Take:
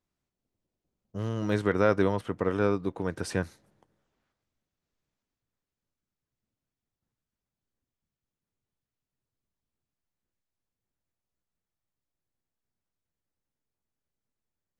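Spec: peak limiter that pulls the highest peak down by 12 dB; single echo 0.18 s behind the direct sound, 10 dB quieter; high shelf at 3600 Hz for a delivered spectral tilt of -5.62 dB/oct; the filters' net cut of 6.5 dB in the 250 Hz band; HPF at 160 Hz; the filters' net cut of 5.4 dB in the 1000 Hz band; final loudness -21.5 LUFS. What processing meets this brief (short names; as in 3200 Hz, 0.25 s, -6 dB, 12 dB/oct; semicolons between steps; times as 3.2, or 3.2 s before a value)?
HPF 160 Hz; bell 250 Hz -7.5 dB; bell 1000 Hz -6.5 dB; high shelf 3600 Hz -6.5 dB; limiter -26 dBFS; echo 0.18 s -10 dB; gain +16.5 dB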